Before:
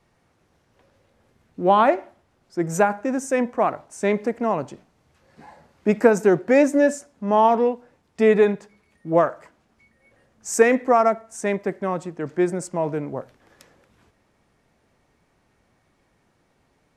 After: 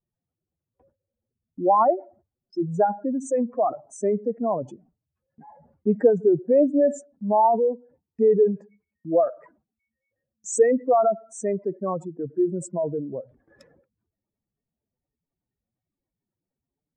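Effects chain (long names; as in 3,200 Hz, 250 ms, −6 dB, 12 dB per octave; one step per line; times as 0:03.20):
expanding power law on the bin magnitudes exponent 2.6
noise gate with hold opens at −48 dBFS
level −1.5 dB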